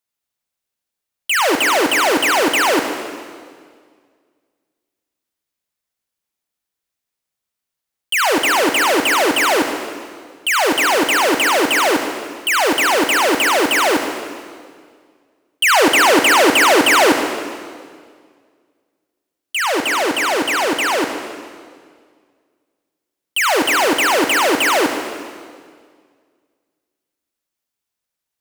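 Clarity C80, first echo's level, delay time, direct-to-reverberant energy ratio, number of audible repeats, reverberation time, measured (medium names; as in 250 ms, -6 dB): 6.5 dB, no echo, no echo, 5.0 dB, no echo, 1.9 s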